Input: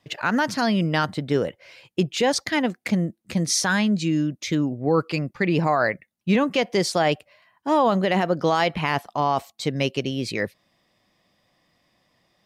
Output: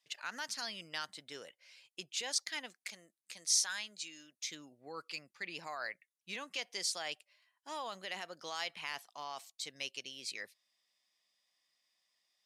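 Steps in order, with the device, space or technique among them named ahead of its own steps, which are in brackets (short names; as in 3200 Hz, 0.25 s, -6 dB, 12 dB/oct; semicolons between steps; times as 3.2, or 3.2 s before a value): 2.85–4.48 HPF 510 Hz 6 dB/oct; piezo pickup straight into a mixer (LPF 9000 Hz 12 dB/oct; differentiator); gain -4 dB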